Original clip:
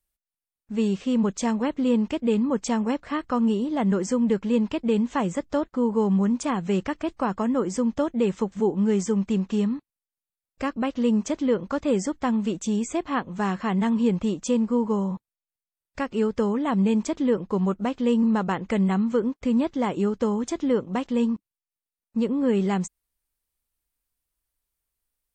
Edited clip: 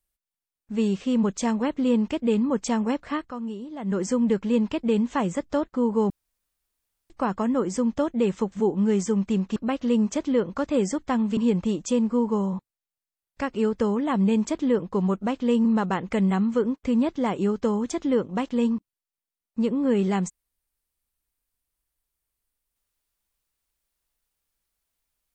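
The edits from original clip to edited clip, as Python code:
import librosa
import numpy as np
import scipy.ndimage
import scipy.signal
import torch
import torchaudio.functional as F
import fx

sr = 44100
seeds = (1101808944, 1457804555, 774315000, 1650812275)

y = fx.edit(x, sr, fx.fade_down_up(start_s=3.14, length_s=0.87, db=-10.5, fade_s=0.19),
    fx.room_tone_fill(start_s=6.1, length_s=1.0),
    fx.cut(start_s=9.56, length_s=1.14),
    fx.cut(start_s=12.51, length_s=1.44), tone=tone)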